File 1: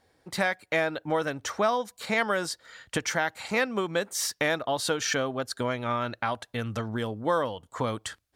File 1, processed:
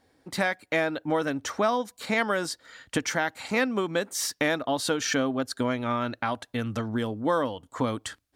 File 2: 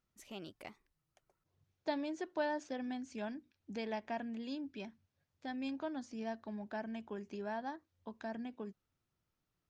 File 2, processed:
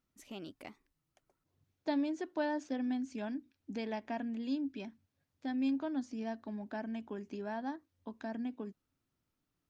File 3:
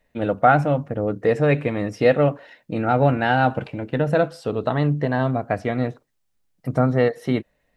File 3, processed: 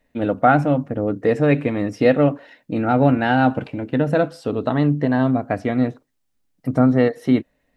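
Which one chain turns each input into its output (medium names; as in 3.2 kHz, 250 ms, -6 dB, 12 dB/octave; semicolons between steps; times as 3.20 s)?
peaking EQ 270 Hz +8.5 dB 0.43 oct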